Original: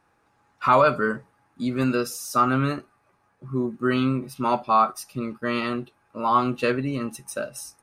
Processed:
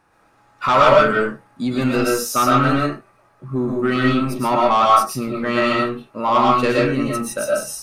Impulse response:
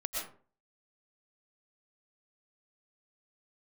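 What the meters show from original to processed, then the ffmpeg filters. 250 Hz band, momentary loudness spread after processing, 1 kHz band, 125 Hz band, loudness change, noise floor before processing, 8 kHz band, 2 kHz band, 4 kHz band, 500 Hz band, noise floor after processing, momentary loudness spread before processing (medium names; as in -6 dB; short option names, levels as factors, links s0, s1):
+5.5 dB, 11 LU, +6.5 dB, +5.0 dB, +6.5 dB, -66 dBFS, +8.5 dB, +7.5 dB, +10.0 dB, +8.0 dB, -57 dBFS, 12 LU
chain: -filter_complex "[0:a]asoftclip=type=tanh:threshold=0.158[s0];[1:a]atrim=start_sample=2205,afade=t=out:st=0.27:d=0.01,atrim=end_sample=12348[s1];[s0][s1]afir=irnorm=-1:irlink=0,volume=2.11"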